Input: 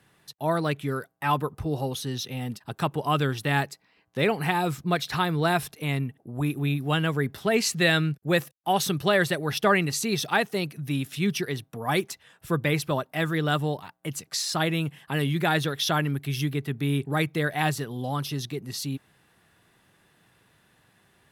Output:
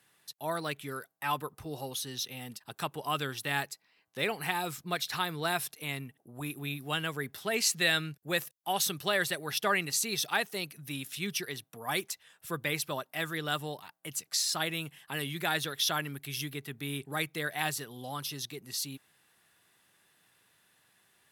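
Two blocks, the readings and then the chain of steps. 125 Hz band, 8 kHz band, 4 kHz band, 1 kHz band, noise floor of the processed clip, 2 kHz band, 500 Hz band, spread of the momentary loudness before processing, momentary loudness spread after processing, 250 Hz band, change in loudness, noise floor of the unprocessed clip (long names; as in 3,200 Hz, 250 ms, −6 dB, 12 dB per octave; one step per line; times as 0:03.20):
−14.0 dB, 0.0 dB, −2.0 dB, −7.0 dB, −73 dBFS, −5.0 dB, −9.5 dB, 9 LU, 12 LU, −12.0 dB, −6.5 dB, −65 dBFS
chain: spectral tilt +2.5 dB per octave
level −7 dB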